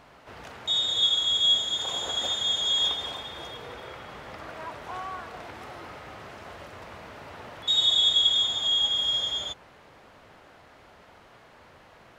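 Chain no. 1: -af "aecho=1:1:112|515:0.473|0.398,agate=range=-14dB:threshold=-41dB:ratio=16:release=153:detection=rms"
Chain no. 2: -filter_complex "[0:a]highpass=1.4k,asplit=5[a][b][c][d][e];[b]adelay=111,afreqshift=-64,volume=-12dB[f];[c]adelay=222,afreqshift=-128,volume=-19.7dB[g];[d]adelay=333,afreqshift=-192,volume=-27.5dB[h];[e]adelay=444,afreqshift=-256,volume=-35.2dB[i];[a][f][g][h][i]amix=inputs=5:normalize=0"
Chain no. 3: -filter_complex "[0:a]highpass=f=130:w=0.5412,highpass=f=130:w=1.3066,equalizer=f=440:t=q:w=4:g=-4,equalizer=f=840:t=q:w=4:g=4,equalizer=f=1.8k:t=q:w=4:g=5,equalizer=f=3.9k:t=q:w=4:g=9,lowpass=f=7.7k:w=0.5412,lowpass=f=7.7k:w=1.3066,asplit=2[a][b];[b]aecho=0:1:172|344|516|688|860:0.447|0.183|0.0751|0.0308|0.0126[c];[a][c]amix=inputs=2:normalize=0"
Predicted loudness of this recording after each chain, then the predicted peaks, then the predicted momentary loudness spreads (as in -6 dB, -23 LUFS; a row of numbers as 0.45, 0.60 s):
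-21.5, -22.5, -17.0 LUFS; -9.5, -10.0, -4.5 dBFS; 22, 21, 22 LU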